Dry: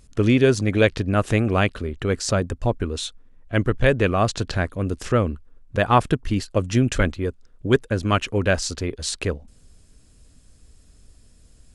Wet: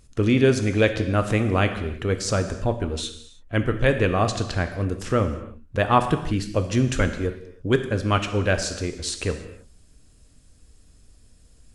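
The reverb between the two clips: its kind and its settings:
reverb whose tail is shaped and stops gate 350 ms falling, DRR 7 dB
level −2 dB

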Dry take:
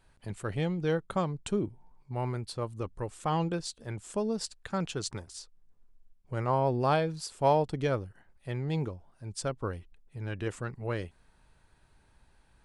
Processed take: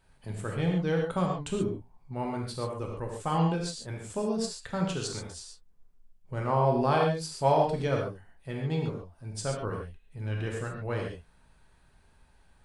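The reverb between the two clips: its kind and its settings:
reverb whose tail is shaped and stops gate 160 ms flat, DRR −0.5 dB
level −1.5 dB

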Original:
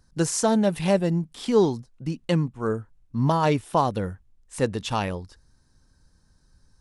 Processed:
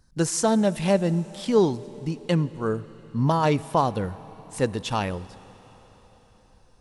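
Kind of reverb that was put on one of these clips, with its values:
comb and all-pass reverb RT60 4.8 s, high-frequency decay 1×, pre-delay 10 ms, DRR 17.5 dB

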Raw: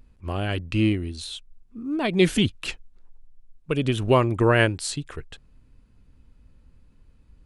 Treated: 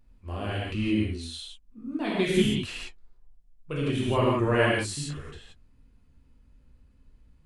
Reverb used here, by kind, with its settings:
reverb whose tail is shaped and stops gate 200 ms flat, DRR −6 dB
level −10.5 dB

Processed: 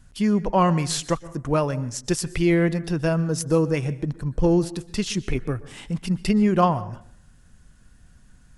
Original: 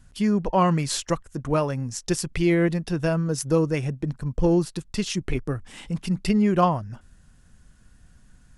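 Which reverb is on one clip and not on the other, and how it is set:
dense smooth reverb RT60 0.57 s, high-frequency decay 0.6×, pre-delay 110 ms, DRR 17 dB
level +1 dB

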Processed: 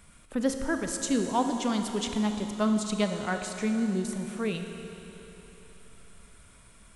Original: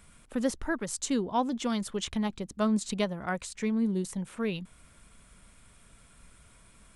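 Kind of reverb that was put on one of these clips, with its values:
four-comb reverb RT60 3.6 s, combs from 26 ms, DRR 5 dB
level +1 dB

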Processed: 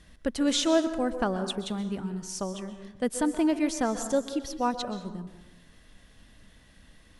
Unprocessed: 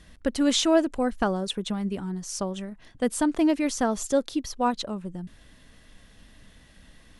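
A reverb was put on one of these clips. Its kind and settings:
dense smooth reverb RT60 1 s, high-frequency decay 0.6×, pre-delay 110 ms, DRR 9.5 dB
level −3 dB

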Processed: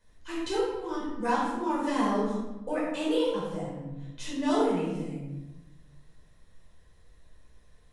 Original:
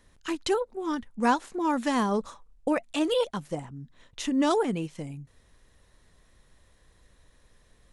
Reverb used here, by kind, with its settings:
rectangular room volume 530 cubic metres, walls mixed, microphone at 5 metres
level −13.5 dB

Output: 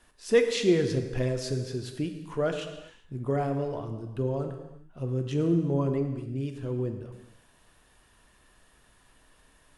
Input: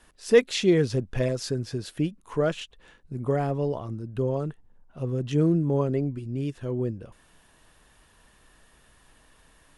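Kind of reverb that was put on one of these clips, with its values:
reverb whose tail is shaped and stops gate 430 ms falling, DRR 5.5 dB
level −3.5 dB

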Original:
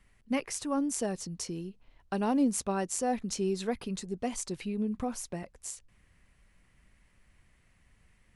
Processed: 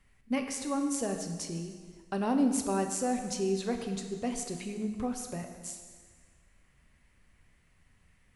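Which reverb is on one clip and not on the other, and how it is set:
dense smooth reverb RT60 1.6 s, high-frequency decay 0.9×, DRR 4.5 dB
level −1.5 dB

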